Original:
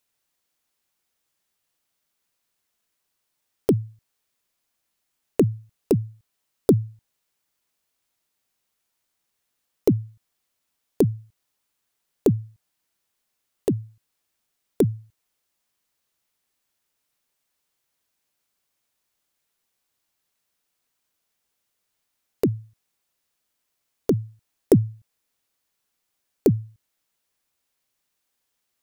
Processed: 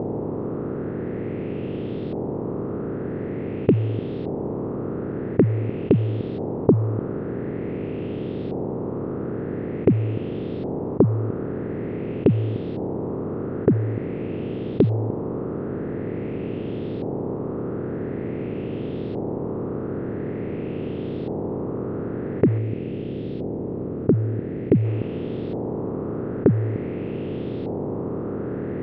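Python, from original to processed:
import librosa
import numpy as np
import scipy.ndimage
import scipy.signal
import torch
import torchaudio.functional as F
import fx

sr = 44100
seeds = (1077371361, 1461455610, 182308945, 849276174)

y = fx.bin_compress(x, sr, power=0.2)
y = fx.peak_eq(y, sr, hz=1100.0, db=-8.5, octaves=1.4, at=(22.58, 24.85))
y = fx.filter_lfo_lowpass(y, sr, shape='saw_up', hz=0.47, low_hz=800.0, high_hz=4000.0, q=3.2)
y = fx.air_absorb(y, sr, metres=430.0)
y = y * librosa.db_to_amplitude(-2.5)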